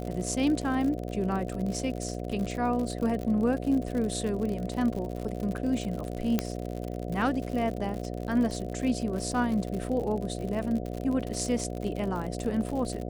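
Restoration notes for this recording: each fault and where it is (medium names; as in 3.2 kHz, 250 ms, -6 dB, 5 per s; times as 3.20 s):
buzz 60 Hz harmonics 12 -35 dBFS
crackle 77 per s -33 dBFS
6.39 s: pop -11 dBFS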